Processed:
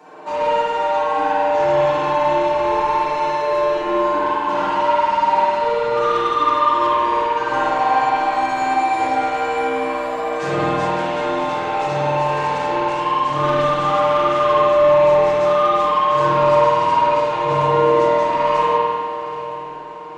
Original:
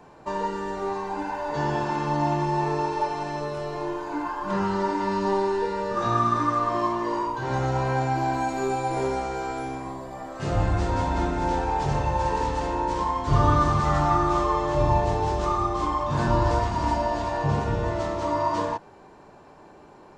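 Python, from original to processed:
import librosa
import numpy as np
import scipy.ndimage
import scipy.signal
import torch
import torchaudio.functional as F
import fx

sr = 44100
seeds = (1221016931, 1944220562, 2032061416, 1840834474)

p1 = scipy.signal.sosfilt(scipy.signal.butter(2, 330.0, 'highpass', fs=sr, output='sos'), x)
p2 = p1 + 0.88 * np.pad(p1, (int(6.5 * sr / 1000.0), 0))[:len(p1)]
p3 = fx.rider(p2, sr, range_db=10, speed_s=0.5)
p4 = p2 + (p3 * librosa.db_to_amplitude(0.0))
p5 = 10.0 ** (-16.0 / 20.0) * np.tanh(p4 / 10.0 ** (-16.0 / 20.0))
p6 = p5 + fx.echo_diffused(p5, sr, ms=806, feedback_pct=43, wet_db=-13.5, dry=0)
p7 = fx.rev_spring(p6, sr, rt60_s=1.9, pass_ms=(49,), chirp_ms=30, drr_db=-7.5)
y = p7 * librosa.db_to_amplitude(-5.5)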